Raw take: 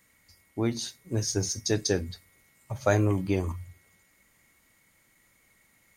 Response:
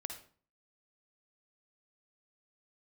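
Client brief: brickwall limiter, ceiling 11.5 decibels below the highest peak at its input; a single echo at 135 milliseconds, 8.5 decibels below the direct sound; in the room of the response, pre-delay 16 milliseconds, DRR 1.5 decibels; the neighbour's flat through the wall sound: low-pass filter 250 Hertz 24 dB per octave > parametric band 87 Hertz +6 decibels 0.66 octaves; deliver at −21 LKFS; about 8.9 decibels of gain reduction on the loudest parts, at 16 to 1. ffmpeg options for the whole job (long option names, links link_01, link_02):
-filter_complex "[0:a]acompressor=threshold=-27dB:ratio=16,alimiter=level_in=1.5dB:limit=-24dB:level=0:latency=1,volume=-1.5dB,aecho=1:1:135:0.376,asplit=2[link_01][link_02];[1:a]atrim=start_sample=2205,adelay=16[link_03];[link_02][link_03]afir=irnorm=-1:irlink=0,volume=0dB[link_04];[link_01][link_04]amix=inputs=2:normalize=0,lowpass=frequency=250:width=0.5412,lowpass=frequency=250:width=1.3066,equalizer=frequency=87:width_type=o:width=0.66:gain=6,volume=15.5dB"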